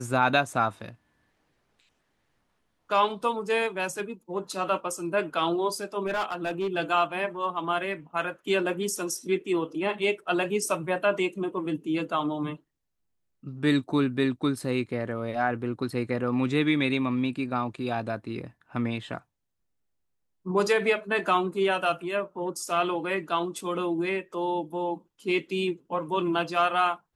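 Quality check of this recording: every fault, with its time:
6.06–6.77 clipped -24 dBFS

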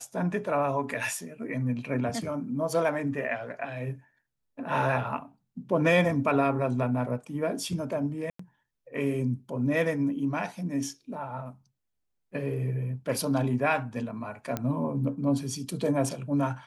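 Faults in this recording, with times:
8.3–8.39 gap 94 ms
14.57 pop -15 dBFS

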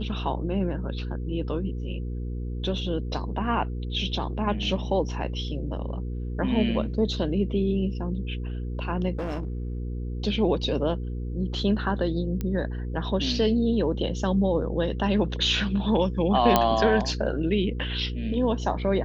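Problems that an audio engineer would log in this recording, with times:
hum 60 Hz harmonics 8 -31 dBFS
9.18–9.78 clipped -26.5 dBFS
12.41 pop -17 dBFS
16.56 pop -4 dBFS

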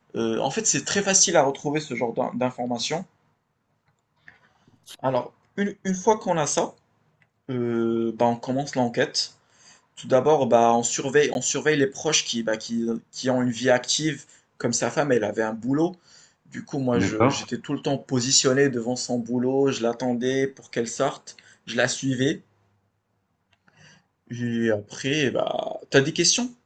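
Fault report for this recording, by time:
11.34–11.35 gap 11 ms

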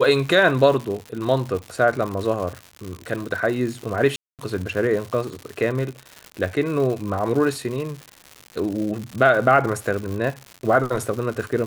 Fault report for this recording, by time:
crackle 190/s -28 dBFS
4.16–4.39 gap 0.228 s

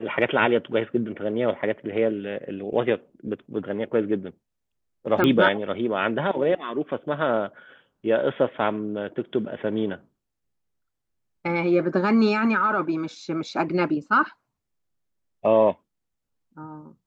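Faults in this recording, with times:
5.24 pop -10 dBFS

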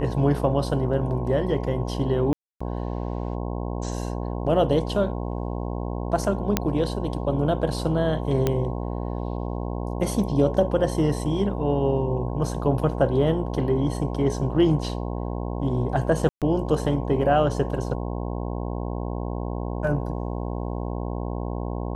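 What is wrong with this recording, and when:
buzz 60 Hz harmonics 18 -29 dBFS
2.33–2.6 gap 0.275 s
6.57 pop -4 dBFS
8.47 pop -9 dBFS
16.29–16.42 gap 0.127 s

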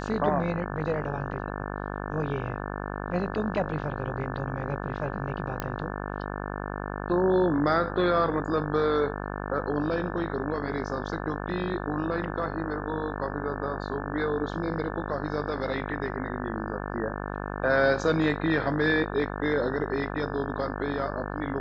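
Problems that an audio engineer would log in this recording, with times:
buzz 50 Hz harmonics 35 -34 dBFS
5.6 pop -15 dBFS

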